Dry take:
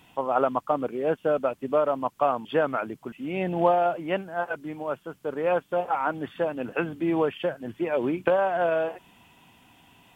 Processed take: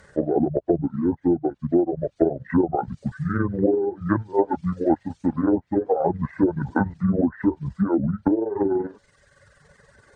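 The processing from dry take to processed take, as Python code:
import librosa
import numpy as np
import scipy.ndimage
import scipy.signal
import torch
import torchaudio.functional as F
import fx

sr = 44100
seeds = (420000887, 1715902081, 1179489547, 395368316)

y = fx.pitch_heads(x, sr, semitones=-9.5)
y = fx.dereverb_blind(y, sr, rt60_s=1.3)
y = fx.env_lowpass_down(y, sr, base_hz=540.0, full_db=-22.5)
y = fx.rider(y, sr, range_db=5, speed_s=0.5)
y = y * librosa.db_to_amplitude(7.0)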